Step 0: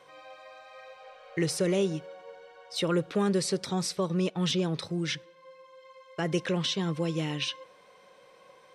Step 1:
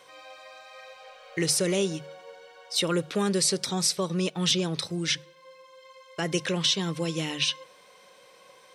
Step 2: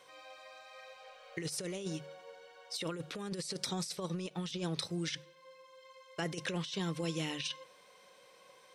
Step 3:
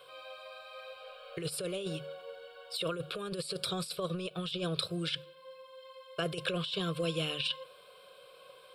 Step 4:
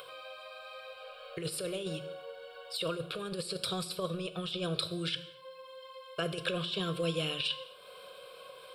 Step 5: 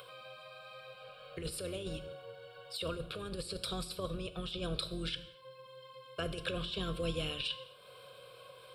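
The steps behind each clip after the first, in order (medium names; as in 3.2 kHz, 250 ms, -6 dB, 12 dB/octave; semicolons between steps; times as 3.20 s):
treble shelf 2.9 kHz +11 dB; hum notches 50/100/150 Hz
compressor with a negative ratio -28 dBFS, ratio -0.5; endings held to a fixed fall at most 440 dB/s; trim -8.5 dB
static phaser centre 1.3 kHz, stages 8; trim +7 dB
upward compressor, threshold -43 dBFS; gated-style reverb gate 280 ms falling, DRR 11 dB
octave divider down 2 oct, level -2 dB; trim -4 dB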